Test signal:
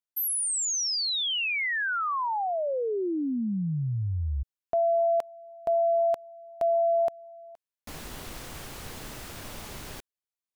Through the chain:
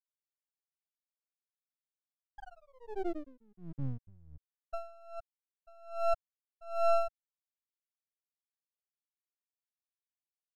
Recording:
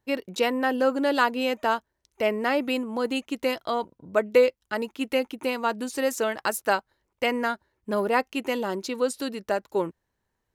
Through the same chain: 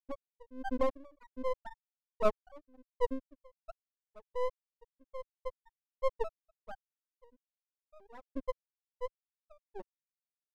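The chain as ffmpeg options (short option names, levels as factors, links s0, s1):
-filter_complex "[0:a]asplit=2[s0][s1];[s1]acrusher=samples=14:mix=1:aa=0.000001:lfo=1:lforange=22.4:lforate=0.21,volume=0.631[s2];[s0][s2]amix=inputs=2:normalize=0,afftfilt=real='re*gte(hypot(re,im),0.794)':imag='im*gte(hypot(re,im),0.794)':win_size=1024:overlap=0.75,asubboost=boost=6.5:cutoff=56,aeval=exprs='max(val(0),0)':c=same,aeval=exprs='val(0)*pow(10,-31*(0.5-0.5*cos(2*PI*1.3*n/s))/20)':c=same"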